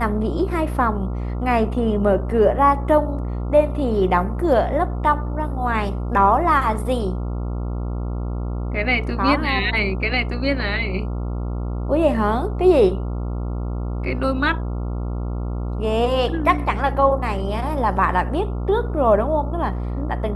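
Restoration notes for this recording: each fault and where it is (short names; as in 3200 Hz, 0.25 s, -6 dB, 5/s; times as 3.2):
buzz 60 Hz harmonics 23 -25 dBFS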